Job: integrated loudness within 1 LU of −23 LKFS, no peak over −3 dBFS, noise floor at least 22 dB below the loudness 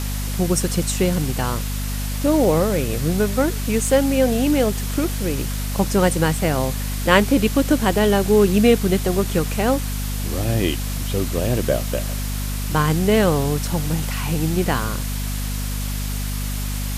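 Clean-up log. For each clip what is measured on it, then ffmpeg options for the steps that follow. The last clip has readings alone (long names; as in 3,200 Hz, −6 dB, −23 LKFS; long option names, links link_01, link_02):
mains hum 50 Hz; hum harmonics up to 250 Hz; level of the hum −23 dBFS; background noise floor −25 dBFS; target noise floor −43 dBFS; integrated loudness −20.5 LKFS; sample peak −1.0 dBFS; target loudness −23.0 LKFS
→ -af "bandreject=frequency=50:width_type=h:width=4,bandreject=frequency=100:width_type=h:width=4,bandreject=frequency=150:width_type=h:width=4,bandreject=frequency=200:width_type=h:width=4,bandreject=frequency=250:width_type=h:width=4"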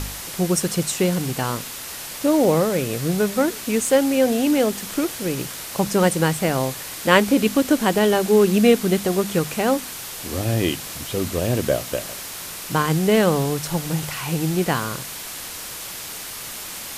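mains hum none found; background noise floor −34 dBFS; target noise floor −44 dBFS
→ -af "afftdn=noise_reduction=10:noise_floor=-34"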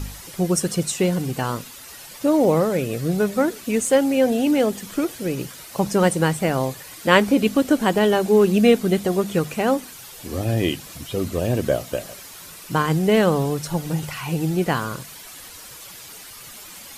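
background noise floor −41 dBFS; target noise floor −43 dBFS
→ -af "afftdn=noise_reduction=6:noise_floor=-41"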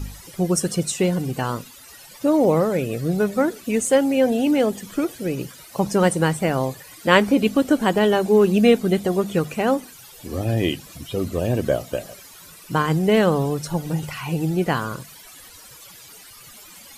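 background noise floor −45 dBFS; integrated loudness −21.0 LKFS; sample peak −1.5 dBFS; target loudness −23.0 LKFS
→ -af "volume=-2dB"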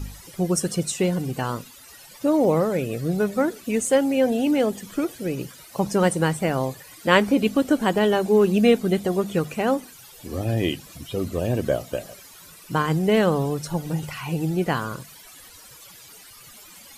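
integrated loudness −23.0 LKFS; sample peak −3.5 dBFS; background noise floor −47 dBFS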